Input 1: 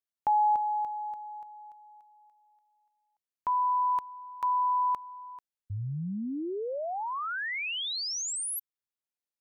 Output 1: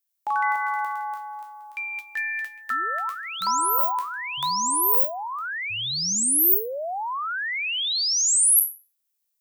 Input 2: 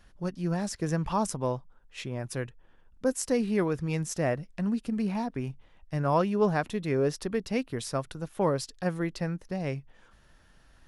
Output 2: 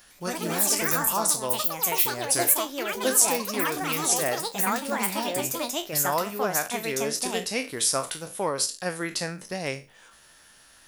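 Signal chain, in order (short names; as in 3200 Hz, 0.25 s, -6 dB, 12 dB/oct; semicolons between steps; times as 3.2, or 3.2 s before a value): spectral trails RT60 0.31 s; vocal rider within 4 dB 0.5 s; echoes that change speed 0.104 s, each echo +5 st, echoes 3; RIAA curve recording; gain +1.5 dB; AAC 160 kbps 44100 Hz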